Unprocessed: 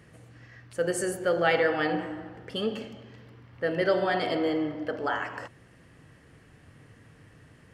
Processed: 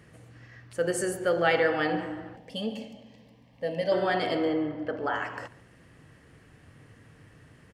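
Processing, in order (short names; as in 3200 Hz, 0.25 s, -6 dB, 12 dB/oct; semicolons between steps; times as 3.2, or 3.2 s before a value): 2.36–3.92 fixed phaser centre 370 Hz, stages 6; 4.45–5.14 high shelf 4100 Hz -11.5 dB; echo 0.142 s -20.5 dB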